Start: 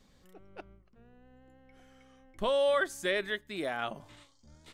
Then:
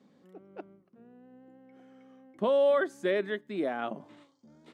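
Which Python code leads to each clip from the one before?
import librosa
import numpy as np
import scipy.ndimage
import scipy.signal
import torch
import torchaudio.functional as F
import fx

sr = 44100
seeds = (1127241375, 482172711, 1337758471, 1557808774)

y = scipy.signal.sosfilt(scipy.signal.butter(4, 210.0, 'highpass', fs=sr, output='sos'), x)
y = fx.tilt_eq(y, sr, slope=-4.0)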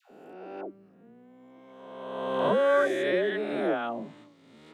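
y = fx.spec_swells(x, sr, rise_s=1.63)
y = fx.dispersion(y, sr, late='lows', ms=113.0, hz=730.0)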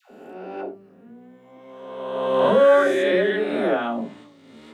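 y = fx.rev_gated(x, sr, seeds[0], gate_ms=120, shape='falling', drr_db=5.5)
y = y * librosa.db_to_amplitude(5.5)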